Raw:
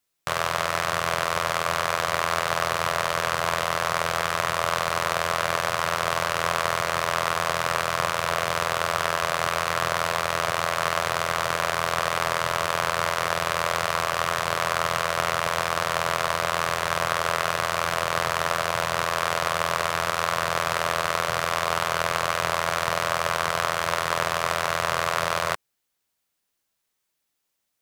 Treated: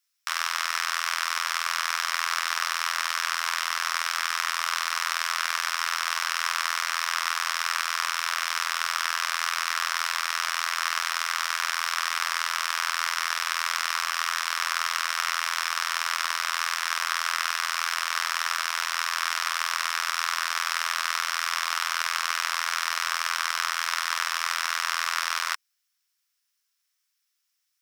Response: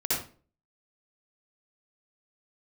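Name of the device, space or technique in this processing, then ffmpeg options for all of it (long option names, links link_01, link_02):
headphones lying on a table: -af "highpass=frequency=1200:width=0.5412,highpass=frequency=1200:width=1.3066,equalizer=frequency=5400:width_type=o:width=0.23:gain=9"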